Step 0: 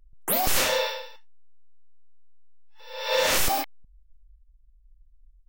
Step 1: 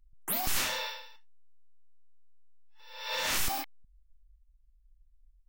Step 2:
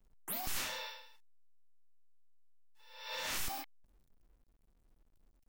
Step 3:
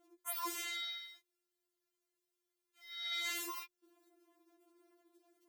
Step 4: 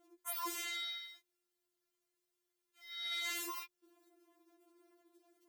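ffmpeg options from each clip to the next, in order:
-af "equalizer=f=520:w=2.1:g=-11.5,volume=0.473"
-af "acrusher=bits=10:mix=0:aa=0.000001,volume=0.398"
-af "afreqshift=270,acompressor=threshold=0.00562:ratio=4,afftfilt=real='re*4*eq(mod(b,16),0)':imag='im*4*eq(mod(b,16),0)':win_size=2048:overlap=0.75,volume=2.66"
-af "asoftclip=type=tanh:threshold=0.0237,volume=1.12"

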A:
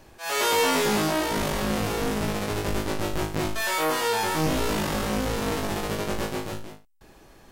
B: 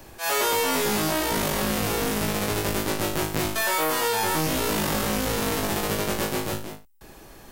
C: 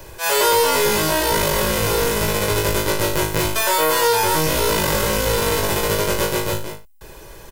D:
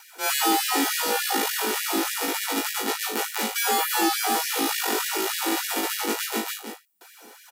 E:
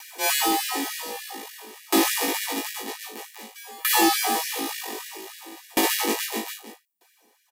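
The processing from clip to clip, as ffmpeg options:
-filter_complex "[0:a]highshelf=f=11000:g=11.5,acrossover=split=90|1500[s0][s1][s2];[s0]acompressor=threshold=0.00891:ratio=4[s3];[s1]acompressor=threshold=0.0355:ratio=4[s4];[s2]acompressor=threshold=0.0316:ratio=4[s5];[s3][s4][s5]amix=inputs=3:normalize=0,volume=1.78"
-af "aecho=1:1:2:0.62,volume=1.78"
-af "afreqshift=-140,acontrast=24,afftfilt=real='re*gte(b*sr/1024,200*pow(1600/200,0.5+0.5*sin(2*PI*3.4*pts/sr)))':imag='im*gte(b*sr/1024,200*pow(1600/200,0.5+0.5*sin(2*PI*3.4*pts/sr)))':win_size=1024:overlap=0.75,volume=0.376"
-af "asoftclip=type=tanh:threshold=0.251,asuperstop=centerf=1400:order=8:qfactor=5.5,aeval=exprs='val(0)*pow(10,-27*if(lt(mod(0.52*n/s,1),2*abs(0.52)/1000),1-mod(0.52*n/s,1)/(2*abs(0.52)/1000),(mod(0.52*n/s,1)-2*abs(0.52)/1000)/(1-2*abs(0.52)/1000))/20)':c=same,volume=2.24"

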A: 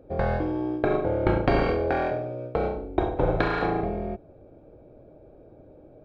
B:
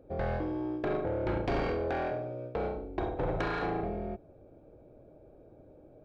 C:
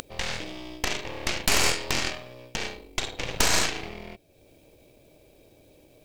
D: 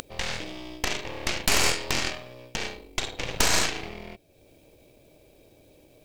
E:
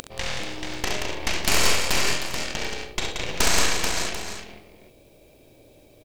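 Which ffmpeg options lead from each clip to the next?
-af "asoftclip=type=tanh:threshold=0.1,volume=0.562"
-af "acompressor=mode=upward:threshold=0.00891:ratio=2.5,aexciter=amount=15.8:drive=6.8:freq=2100,aeval=exprs='0.631*(cos(1*acos(clip(val(0)/0.631,-1,1)))-cos(1*PI/2))+0.316*(cos(3*acos(clip(val(0)/0.631,-1,1)))-cos(3*PI/2))+0.178*(cos(8*acos(clip(val(0)/0.631,-1,1)))-cos(8*PI/2))':c=same,volume=0.841"
-af anull
-af "aecho=1:1:41|67|178|435|740:0.316|0.473|0.562|0.596|0.224"

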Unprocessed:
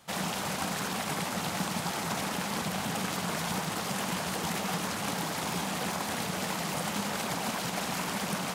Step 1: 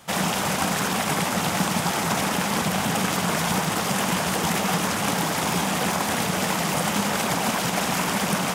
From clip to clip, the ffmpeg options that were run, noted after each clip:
-af "equalizer=f=4200:t=o:w=0.28:g=-4,volume=2.82"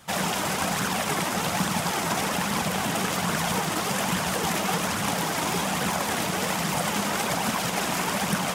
-af "flanger=delay=0.5:depth=2.8:regen=58:speed=1.2:shape=triangular,volume=1.26"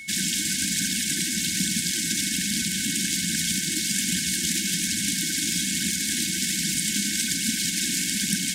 -af "aeval=exprs='val(0)+0.0224*sin(2*PI*2200*n/s)':c=same,equalizer=f=125:t=o:w=1:g=-9,equalizer=f=250:t=o:w=1:g=6,equalizer=f=500:t=o:w=1:g=-12,equalizer=f=1000:t=o:w=1:g=9,equalizer=f=2000:t=o:w=1:g=-8,equalizer=f=4000:t=o:w=1:g=6,equalizer=f=8000:t=o:w=1:g=8,afftfilt=real='re*(1-between(b*sr/4096,360,1500))':imag='im*(1-between(b*sr/4096,360,1500))':win_size=4096:overlap=0.75"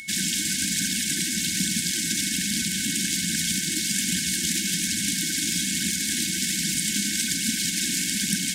-af "acompressor=mode=upward:threshold=0.00794:ratio=2.5"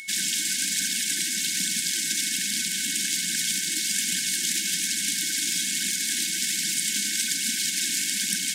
-af "highpass=f=670:p=1"

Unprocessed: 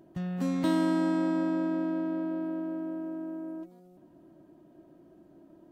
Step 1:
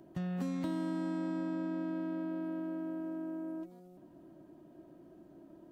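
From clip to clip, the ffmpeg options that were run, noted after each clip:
-filter_complex "[0:a]acrossover=split=200|1300[s0][s1][s2];[s0]acompressor=threshold=0.01:ratio=4[s3];[s1]acompressor=threshold=0.0112:ratio=4[s4];[s2]acompressor=threshold=0.00178:ratio=4[s5];[s3][s4][s5]amix=inputs=3:normalize=0"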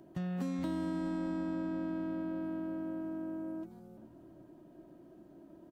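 -filter_complex "[0:a]asplit=4[s0][s1][s2][s3];[s1]adelay=421,afreqshift=-100,volume=0.141[s4];[s2]adelay=842,afreqshift=-200,volume=0.0468[s5];[s3]adelay=1263,afreqshift=-300,volume=0.0153[s6];[s0][s4][s5][s6]amix=inputs=4:normalize=0"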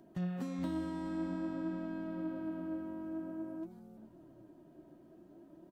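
-af "flanger=delay=4.3:depth=9.3:regen=52:speed=0.51:shape=sinusoidal,volume=1.26"

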